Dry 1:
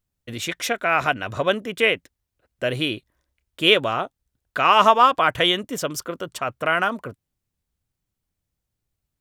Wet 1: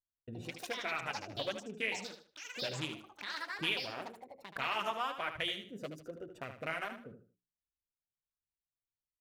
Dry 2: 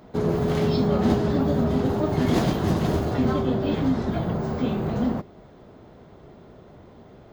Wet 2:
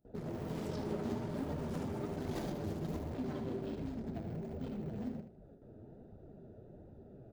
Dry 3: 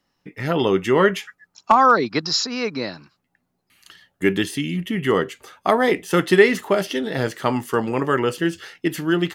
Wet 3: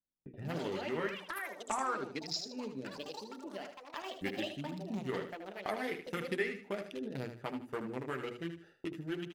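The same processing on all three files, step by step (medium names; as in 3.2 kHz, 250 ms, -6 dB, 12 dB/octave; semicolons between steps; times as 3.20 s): local Wiener filter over 41 samples; dynamic bell 2.2 kHz, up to +6 dB, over -37 dBFS, Q 2.1; gate with hold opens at -42 dBFS; treble shelf 5.3 kHz +11 dB; flange 1.3 Hz, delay 0.6 ms, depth 9.7 ms, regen +30%; compression 2:1, threshold -46 dBFS; hum notches 60/120/180/240/300/360/420 Hz; ever faster or slower copies 164 ms, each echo +7 st, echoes 2, each echo -6 dB; band-stop 1.1 kHz, Q 29; on a send: feedback delay 77 ms, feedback 27%, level -9 dB; on the sum: trim -1 dB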